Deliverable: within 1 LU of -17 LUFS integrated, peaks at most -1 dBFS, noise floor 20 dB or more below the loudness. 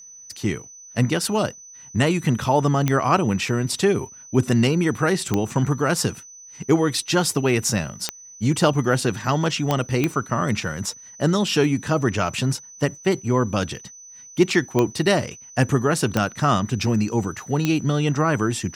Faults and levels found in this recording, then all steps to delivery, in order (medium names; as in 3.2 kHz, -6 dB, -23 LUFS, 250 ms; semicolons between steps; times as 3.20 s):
clicks found 8; steady tone 6 kHz; tone level -41 dBFS; loudness -22.0 LUFS; peak level -4.0 dBFS; loudness target -17.0 LUFS
-> de-click; band-stop 6 kHz, Q 30; trim +5 dB; peak limiter -1 dBFS